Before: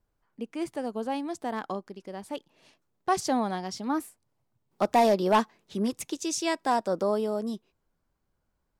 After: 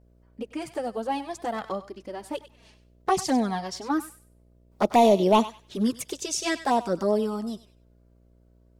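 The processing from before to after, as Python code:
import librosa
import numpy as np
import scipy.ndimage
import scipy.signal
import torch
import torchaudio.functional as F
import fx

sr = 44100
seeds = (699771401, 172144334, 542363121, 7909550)

y = fx.env_flanger(x, sr, rest_ms=5.3, full_db=-20.5)
y = fx.dmg_buzz(y, sr, base_hz=60.0, harmonics=11, level_db=-64.0, tilt_db=-6, odd_only=False)
y = fx.echo_thinned(y, sr, ms=97, feedback_pct=24, hz=1200.0, wet_db=-12.0)
y = F.gain(torch.from_numpy(y), 5.5).numpy()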